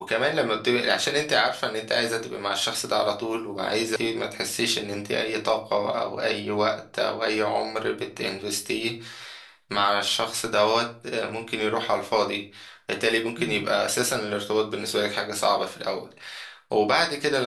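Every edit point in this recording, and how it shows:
3.96 sound cut off

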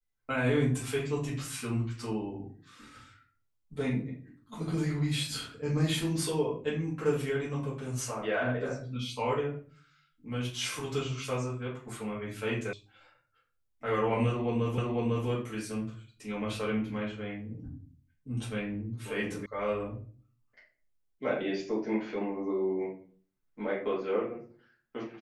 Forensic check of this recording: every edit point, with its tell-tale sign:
12.73 sound cut off
14.78 repeat of the last 0.5 s
19.46 sound cut off

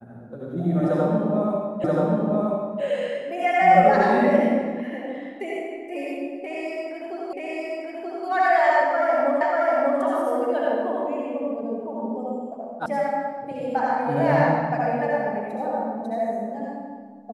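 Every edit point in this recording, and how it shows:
1.84 repeat of the last 0.98 s
7.33 repeat of the last 0.93 s
9.41 repeat of the last 0.59 s
12.86 sound cut off

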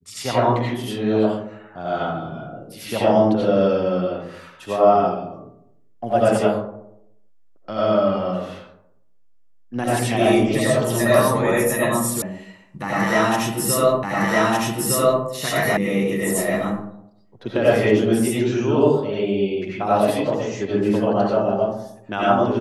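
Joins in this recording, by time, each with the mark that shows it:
12.22 sound cut off
14.03 repeat of the last 1.21 s
15.77 sound cut off

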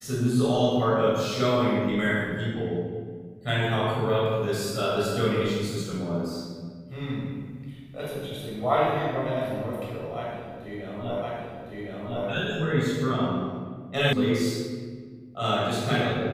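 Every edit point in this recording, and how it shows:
11.22 repeat of the last 1.06 s
14.13 sound cut off

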